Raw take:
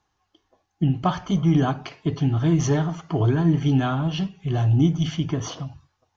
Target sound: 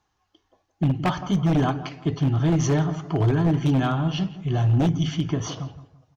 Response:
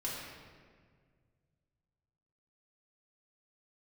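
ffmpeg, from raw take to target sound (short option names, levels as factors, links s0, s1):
-filter_complex "[0:a]asplit=2[s0][s1];[s1]adelay=168,lowpass=f=1700:p=1,volume=0.211,asplit=2[s2][s3];[s3]adelay=168,lowpass=f=1700:p=1,volume=0.35,asplit=2[s4][s5];[s5]adelay=168,lowpass=f=1700:p=1,volume=0.35[s6];[s0][s2][s4][s6]amix=inputs=4:normalize=0,aeval=exprs='0.2*(abs(mod(val(0)/0.2+3,4)-2)-1)':c=same"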